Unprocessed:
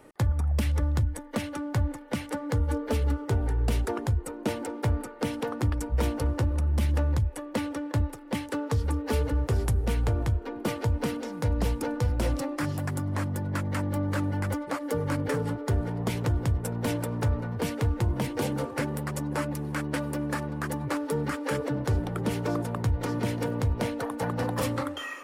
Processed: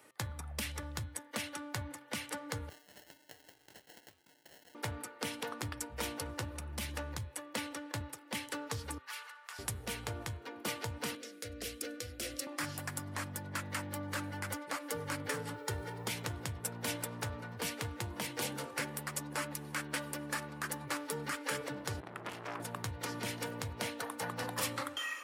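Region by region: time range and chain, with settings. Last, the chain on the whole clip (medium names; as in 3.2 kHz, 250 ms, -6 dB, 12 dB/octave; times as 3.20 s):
2.69–4.75 s: differentiator + compressor with a negative ratio -46 dBFS, ratio -0.5 + sample-rate reducer 1.2 kHz
8.98–9.59 s: high-pass 1.1 kHz 24 dB/octave + treble shelf 2.2 kHz -10 dB + decay stretcher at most 48 dB/s
11.15–12.47 s: static phaser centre 380 Hz, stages 4 + three bands expanded up and down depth 40%
15.54–16.08 s: comb 2.2 ms, depth 59% + word length cut 12-bit, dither none
22.00–22.60 s: treble shelf 4.5 kHz -11 dB + transformer saturation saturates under 1.1 kHz
whole clip: high-pass 81 Hz 24 dB/octave; tilt shelf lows -8 dB; de-hum 130.9 Hz, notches 32; trim -6.5 dB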